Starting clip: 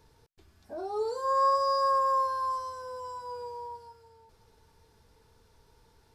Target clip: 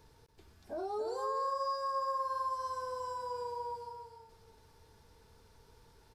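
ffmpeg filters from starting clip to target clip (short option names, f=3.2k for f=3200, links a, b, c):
-filter_complex "[0:a]acompressor=threshold=-35dB:ratio=4,asplit=2[a][b];[b]aecho=0:1:285:0.447[c];[a][c]amix=inputs=2:normalize=0"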